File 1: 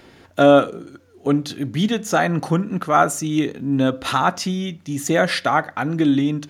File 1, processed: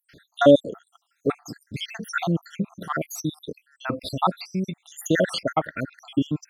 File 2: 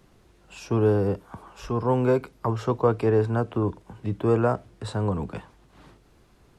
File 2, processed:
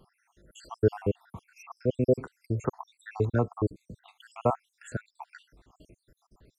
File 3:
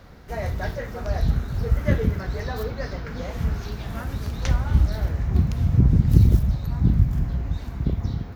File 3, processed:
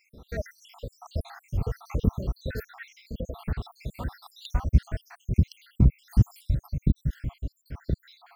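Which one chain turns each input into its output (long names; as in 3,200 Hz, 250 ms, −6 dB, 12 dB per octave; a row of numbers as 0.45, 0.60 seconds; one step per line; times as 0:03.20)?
time-frequency cells dropped at random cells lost 76%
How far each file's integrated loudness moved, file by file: −5.5, −5.5, −6.0 LU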